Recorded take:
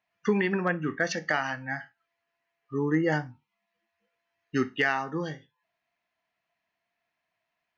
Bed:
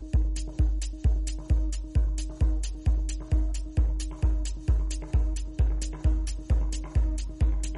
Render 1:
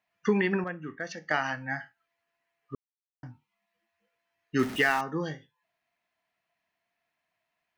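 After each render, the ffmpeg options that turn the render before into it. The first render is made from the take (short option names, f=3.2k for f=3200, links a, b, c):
-filter_complex "[0:a]asettb=1/sr,asplit=3[a][b][c];[a]atrim=end=4.594[d];[b]atrim=start=4.59:end=5.01,asetpts=PTS-STARTPTS,afade=t=in:d=0.004:c=qsin,afade=t=out:st=0.416:d=0.004:c=qsin,aeval=exprs='val(0)+0.5*0.0211*sgn(val(0))':c=same[e];[c]atrim=start=5.006[f];[d][e]acrossfade=d=0.004:c1=hsin:c2=qsin[g];[g][f]acrossfade=d=0.004:c1=qsin:c2=hsin,asplit=5[h][i][j][k][l];[h]atrim=end=0.642[m];[i]atrim=start=0.638:end=1.312,asetpts=PTS-STARTPTS,volume=-9dB[n];[j]atrim=start=1.308:end=2.75,asetpts=PTS-STARTPTS,afade=t=out:st=1.438:d=0.004:c=hsin[o];[k]atrim=start=2.75:end=3.23,asetpts=PTS-STARTPTS,volume=0[p];[l]atrim=start=3.23,asetpts=PTS-STARTPTS,afade=t=in:d=0.004:c=hsin[q];[m][n]acrossfade=d=0.004:c1=hsin:c2=hsin[r];[o][p][q]concat=n=3:v=0:a=1[s];[r][s]acrossfade=d=0.004:c1=hsin:c2=hsin"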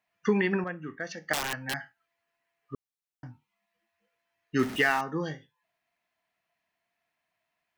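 -filter_complex "[0:a]asettb=1/sr,asplit=3[a][b][c];[a]atrim=end=1.334[d];[b]atrim=start=1.33:end=1.74,asetpts=PTS-STARTPTS,afade=t=in:d=0.004:c=qsin,afade=t=out:st=0.406:d=0.004:c=qsin,aeval=exprs='(mod(14.1*val(0)+1,2)-1)/14.1':c=same[e];[c]atrim=start=1.736[f];[d][e]acrossfade=d=0.004:c1=hsin:c2=qsin[g];[g][f]acrossfade=d=0.004:c1=qsin:c2=hsin"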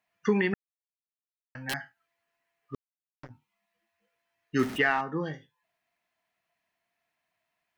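-filter_complex "[0:a]asplit=3[a][b][c];[a]afade=t=out:st=2.74:d=0.02[d];[b]acrusher=bits=5:mix=0:aa=0.5,afade=t=in:st=2.74:d=0.02,afade=t=out:st=3.29:d=0.02[e];[c]afade=t=in:st=3.29:d=0.02[f];[d][e][f]amix=inputs=3:normalize=0,asplit=3[g][h][i];[g]afade=t=out:st=4.77:d=0.02[j];[h]lowpass=3.1k,afade=t=in:st=4.77:d=0.02,afade=t=out:st=5.32:d=0.02[k];[i]afade=t=in:st=5.32:d=0.02[l];[j][k][l]amix=inputs=3:normalize=0,asplit=3[m][n][o];[m]atrim=end=0.54,asetpts=PTS-STARTPTS,afade=t=out:st=0.536:d=0.004:c=hsin[p];[n]atrim=start=0.54:end=1.55,asetpts=PTS-STARTPTS,volume=0[q];[o]atrim=start=1.55,asetpts=PTS-STARTPTS,afade=t=in:d=0.004:c=hsin[r];[p][q][r]concat=n=3:v=0:a=1"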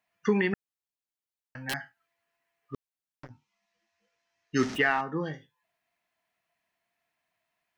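-filter_complex "[0:a]asettb=1/sr,asplit=3[a][b][c];[a]atrim=end=3.284[d];[b]atrim=start=3.28:end=4.75,asetpts=PTS-STARTPTS,afade=t=in:d=0.004:c=qsin,afade=t=out:st=1.466:d=0.004:c=qsin,lowpass=f=5.9k:t=q:w=2.6[e];[c]atrim=start=4.746[f];[d][e]acrossfade=d=0.004:c1=hsin:c2=qsin[g];[g][f]acrossfade=d=0.004:c1=qsin:c2=hsin"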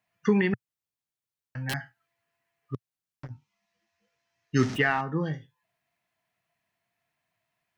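-af "equalizer=f=120:w=1.3:g=11"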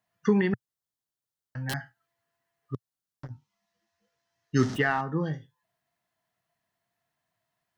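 -af "equalizer=f=2.4k:t=o:w=0.46:g=-8.5"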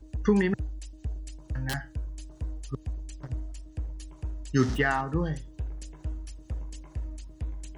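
-filter_complex "[1:a]volume=-10dB[a];[0:a][a]amix=inputs=2:normalize=0"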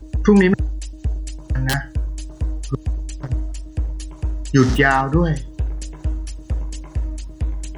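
-af "volume=11.5dB,alimiter=limit=-3dB:level=0:latency=1"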